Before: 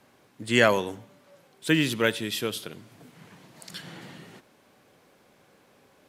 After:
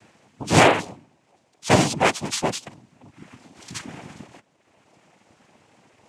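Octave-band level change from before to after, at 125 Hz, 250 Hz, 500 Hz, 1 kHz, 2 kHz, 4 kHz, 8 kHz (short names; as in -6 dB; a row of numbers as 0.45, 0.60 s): +8.0, +3.0, +4.0, +11.0, +2.5, +3.0, +10.0 dB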